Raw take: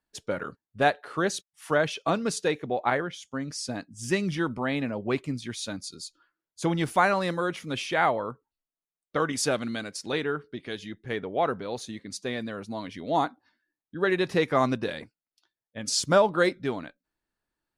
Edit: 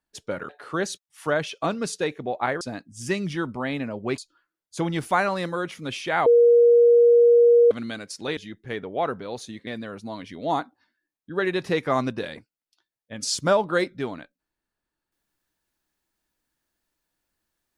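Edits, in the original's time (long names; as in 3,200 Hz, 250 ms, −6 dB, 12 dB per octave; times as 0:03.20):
0:00.49–0:00.93: remove
0:03.05–0:03.63: remove
0:05.20–0:06.03: remove
0:08.11–0:09.56: beep over 474 Hz −11.5 dBFS
0:10.22–0:10.77: remove
0:12.07–0:12.32: remove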